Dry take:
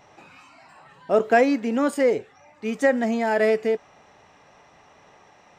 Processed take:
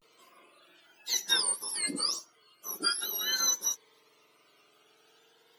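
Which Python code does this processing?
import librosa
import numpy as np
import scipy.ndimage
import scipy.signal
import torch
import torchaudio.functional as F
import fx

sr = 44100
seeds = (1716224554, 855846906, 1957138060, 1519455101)

y = fx.octave_mirror(x, sr, pivot_hz=1600.0)
y = fx.vibrato(y, sr, rate_hz=0.39, depth_cents=73.0)
y = fx.notch_cascade(y, sr, direction='rising', hz=0.47)
y = y * 10.0 ** (-4.5 / 20.0)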